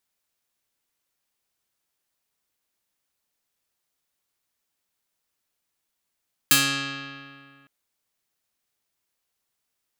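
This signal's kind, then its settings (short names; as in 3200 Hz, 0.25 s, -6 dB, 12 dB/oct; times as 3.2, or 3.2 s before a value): plucked string C#3, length 1.16 s, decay 2.16 s, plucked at 0.28, medium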